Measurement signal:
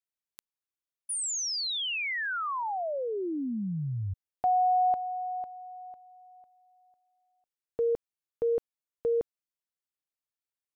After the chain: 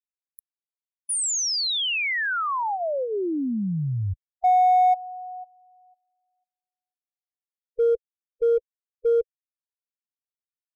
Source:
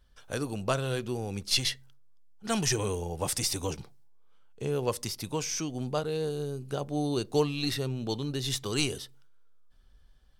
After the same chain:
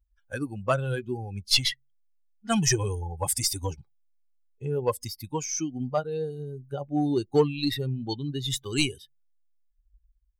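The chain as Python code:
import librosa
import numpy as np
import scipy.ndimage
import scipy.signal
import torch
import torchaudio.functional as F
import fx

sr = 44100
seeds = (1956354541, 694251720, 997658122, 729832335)

p1 = fx.bin_expand(x, sr, power=2.0)
p2 = np.clip(p1, -10.0 ** (-27.5 / 20.0), 10.0 ** (-27.5 / 20.0))
p3 = p1 + (p2 * librosa.db_to_amplitude(-10.0))
y = p3 * librosa.db_to_amplitude(5.5)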